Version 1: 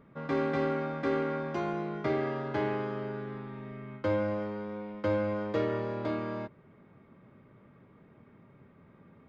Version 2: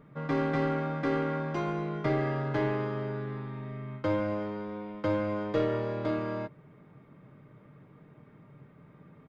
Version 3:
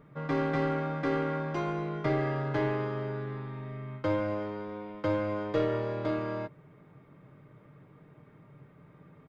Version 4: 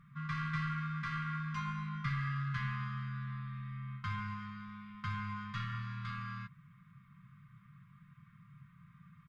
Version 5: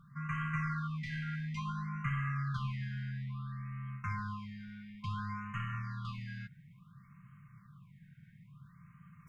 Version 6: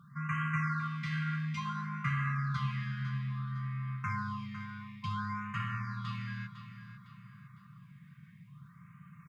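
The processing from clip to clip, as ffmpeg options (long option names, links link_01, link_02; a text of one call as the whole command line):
ffmpeg -i in.wav -filter_complex "[0:a]equalizer=frequency=140:width_type=o:width=0.27:gain=5.5,aecho=1:1:6.6:0.31,asplit=2[link_01][link_02];[link_02]aeval=exprs='clip(val(0),-1,0.0299)':channel_layout=same,volume=-7dB[link_03];[link_01][link_03]amix=inputs=2:normalize=0,volume=-2dB" out.wav
ffmpeg -i in.wav -af "equalizer=frequency=220:width=4.9:gain=-6.5" out.wav
ffmpeg -i in.wav -af "afftfilt=real='re*(1-between(b*sr/4096,230,980))':imag='im*(1-between(b*sr/4096,230,980))':win_size=4096:overlap=0.75,volume=-2.5dB" out.wav
ffmpeg -i in.wav -af "areverse,acompressor=mode=upward:threshold=-54dB:ratio=2.5,areverse,afftfilt=real='re*(1-between(b*sr/1024,990*pow(4500/990,0.5+0.5*sin(2*PI*0.58*pts/sr))/1.41,990*pow(4500/990,0.5+0.5*sin(2*PI*0.58*pts/sr))*1.41))':imag='im*(1-between(b*sr/1024,990*pow(4500/990,0.5+0.5*sin(2*PI*0.58*pts/sr))/1.41,990*pow(4500/990,0.5+0.5*sin(2*PI*0.58*pts/sr))*1.41))':win_size=1024:overlap=0.75,volume=1dB" out.wav
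ffmpeg -i in.wav -filter_complex "[0:a]highpass=110,asplit=2[link_01][link_02];[link_02]aecho=0:1:505|1010|1515|2020:0.266|0.104|0.0405|0.0158[link_03];[link_01][link_03]amix=inputs=2:normalize=0,volume=3.5dB" out.wav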